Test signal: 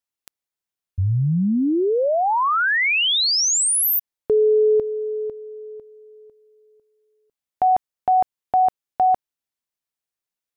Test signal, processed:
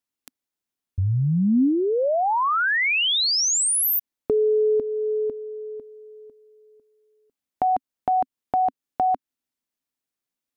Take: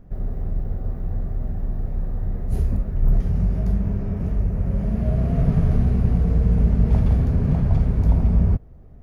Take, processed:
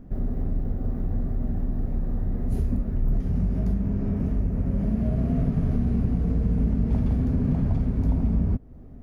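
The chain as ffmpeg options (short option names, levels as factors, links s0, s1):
-af "equalizer=f=260:t=o:w=0.65:g=10.5,acompressor=threshold=0.1:ratio=2.5:attack=5.2:release=710:knee=1:detection=peak"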